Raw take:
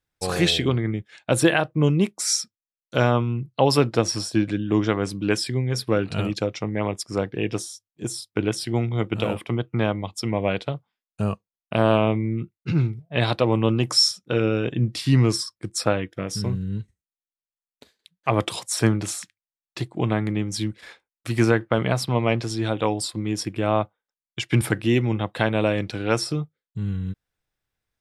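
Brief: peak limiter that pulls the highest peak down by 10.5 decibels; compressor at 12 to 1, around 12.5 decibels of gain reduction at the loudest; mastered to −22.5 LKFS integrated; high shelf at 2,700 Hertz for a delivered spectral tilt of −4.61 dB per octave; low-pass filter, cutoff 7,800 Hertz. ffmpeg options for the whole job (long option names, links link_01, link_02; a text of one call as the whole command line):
ffmpeg -i in.wav -af "lowpass=7800,highshelf=frequency=2700:gain=3,acompressor=threshold=-25dB:ratio=12,volume=10dB,alimiter=limit=-10dB:level=0:latency=1" out.wav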